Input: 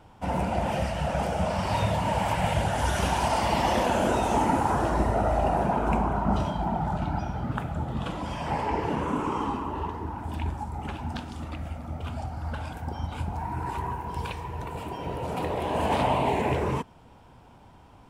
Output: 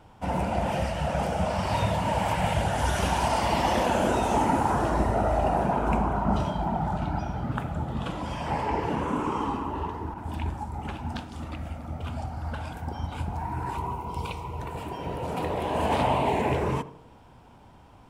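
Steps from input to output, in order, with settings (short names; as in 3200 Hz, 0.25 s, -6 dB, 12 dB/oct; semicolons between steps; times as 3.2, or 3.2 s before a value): 10.14–11.33 expander -33 dBFS; 13.75–14.6 Butterworth band-stop 1700 Hz, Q 2.9; on a send: tape echo 82 ms, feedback 57%, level -13 dB, low-pass 1100 Hz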